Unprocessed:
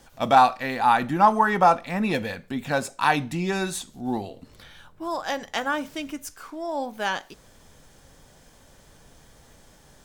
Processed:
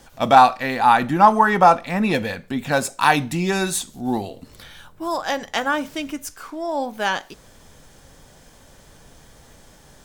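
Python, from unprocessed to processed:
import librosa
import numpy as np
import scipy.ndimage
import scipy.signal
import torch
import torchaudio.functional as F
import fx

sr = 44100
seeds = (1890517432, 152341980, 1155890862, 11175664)

y = fx.high_shelf(x, sr, hz=6700.0, db=6.5, at=(2.72, 5.18))
y = y * librosa.db_to_amplitude(4.5)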